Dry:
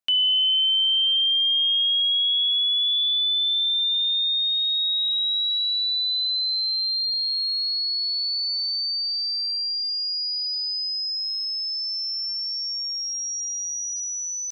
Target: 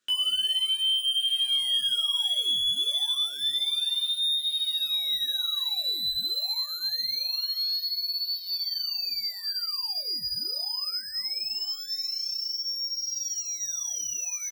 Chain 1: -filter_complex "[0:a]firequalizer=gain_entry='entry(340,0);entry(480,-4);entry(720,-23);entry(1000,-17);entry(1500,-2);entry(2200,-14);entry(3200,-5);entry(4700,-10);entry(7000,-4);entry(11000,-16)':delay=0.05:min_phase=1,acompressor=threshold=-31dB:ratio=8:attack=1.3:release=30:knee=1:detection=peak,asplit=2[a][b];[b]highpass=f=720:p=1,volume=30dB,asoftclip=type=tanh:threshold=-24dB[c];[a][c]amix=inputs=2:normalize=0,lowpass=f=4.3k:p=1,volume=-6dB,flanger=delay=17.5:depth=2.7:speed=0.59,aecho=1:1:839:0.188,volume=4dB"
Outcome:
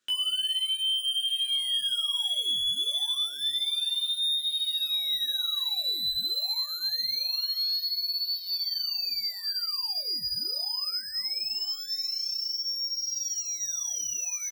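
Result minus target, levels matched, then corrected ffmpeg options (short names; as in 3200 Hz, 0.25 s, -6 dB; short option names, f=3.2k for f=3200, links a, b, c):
compressor: peak gain reduction +6.5 dB
-filter_complex "[0:a]firequalizer=gain_entry='entry(340,0);entry(480,-4);entry(720,-23);entry(1000,-17);entry(1500,-2);entry(2200,-14);entry(3200,-5);entry(4700,-10);entry(7000,-4);entry(11000,-16)':delay=0.05:min_phase=1,asplit=2[a][b];[b]highpass=f=720:p=1,volume=30dB,asoftclip=type=tanh:threshold=-24dB[c];[a][c]amix=inputs=2:normalize=0,lowpass=f=4.3k:p=1,volume=-6dB,flanger=delay=17.5:depth=2.7:speed=0.59,aecho=1:1:839:0.188,volume=4dB"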